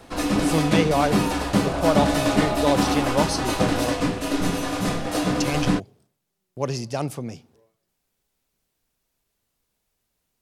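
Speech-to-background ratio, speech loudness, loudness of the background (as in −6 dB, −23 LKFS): −3.5 dB, −26.5 LKFS, −23.0 LKFS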